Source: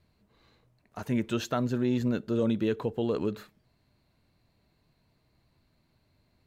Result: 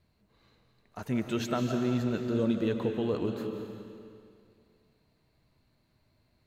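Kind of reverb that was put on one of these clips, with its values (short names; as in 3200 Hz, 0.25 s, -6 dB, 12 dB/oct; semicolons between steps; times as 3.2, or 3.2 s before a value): digital reverb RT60 2.3 s, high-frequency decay 0.95×, pre-delay 0.115 s, DRR 4 dB; gain -2 dB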